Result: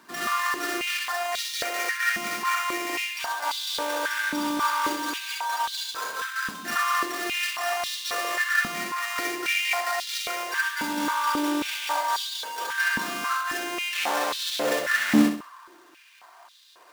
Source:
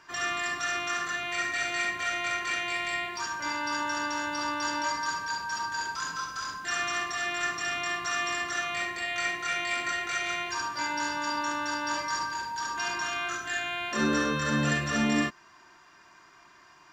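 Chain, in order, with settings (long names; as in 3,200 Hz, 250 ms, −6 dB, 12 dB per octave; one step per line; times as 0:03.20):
each half-wave held at its own peak
flutter between parallel walls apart 11.1 metres, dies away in 0.45 s
high-pass on a step sequencer 3.7 Hz 220–3,700 Hz
level −4 dB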